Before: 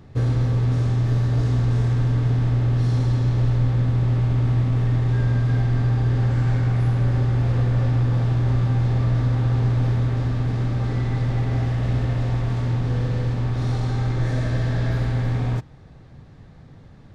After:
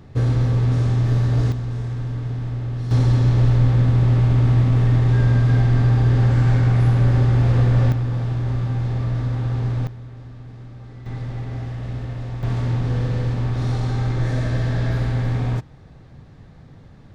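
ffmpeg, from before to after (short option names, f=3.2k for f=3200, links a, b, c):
-af "asetnsamples=n=441:p=0,asendcmd='1.52 volume volume -6dB;2.91 volume volume 4dB;7.92 volume volume -2.5dB;9.87 volume volume -15.5dB;11.06 volume volume -6.5dB;12.43 volume volume 1dB',volume=2dB"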